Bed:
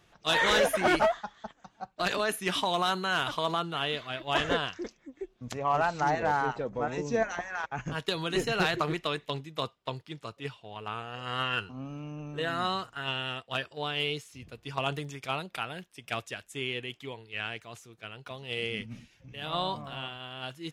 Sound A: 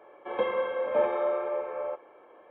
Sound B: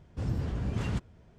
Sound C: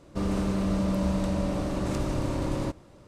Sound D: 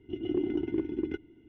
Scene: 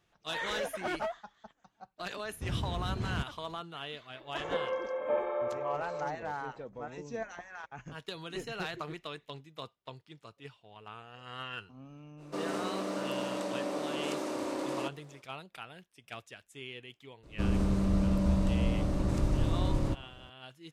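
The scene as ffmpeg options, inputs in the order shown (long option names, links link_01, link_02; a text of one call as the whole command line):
ffmpeg -i bed.wav -i cue0.wav -i cue1.wav -i cue2.wav -filter_complex "[3:a]asplit=2[link_01][link_02];[0:a]volume=-10.5dB[link_03];[link_01]highpass=frequency=290:width=0.5412,highpass=frequency=290:width=1.3066[link_04];[link_02]lowshelf=frequency=140:gain=11[link_05];[2:a]atrim=end=1.38,asetpts=PTS-STARTPTS,volume=-3.5dB,afade=type=in:duration=0.004:curve=hsin,afade=type=out:start_time=1.376:duration=0.004:curve=hsin,adelay=2240[link_06];[1:a]atrim=end=2.5,asetpts=PTS-STARTPTS,volume=-5.5dB,afade=type=in:duration=0.004:curve=hsin,afade=type=out:start_time=2.496:duration=0.004:curve=hsin,adelay=4140[link_07];[link_04]atrim=end=3.07,asetpts=PTS-STARTPTS,volume=-2dB,afade=type=in:duration=0.05,afade=type=out:start_time=3.02:duration=0.05,adelay=12170[link_08];[link_05]atrim=end=3.07,asetpts=PTS-STARTPTS,volume=-6dB,afade=type=in:duration=0.004:curve=hsin,afade=type=out:start_time=3.066:duration=0.004:curve=hsin,adelay=17230[link_09];[link_03][link_06][link_07][link_08][link_09]amix=inputs=5:normalize=0" out.wav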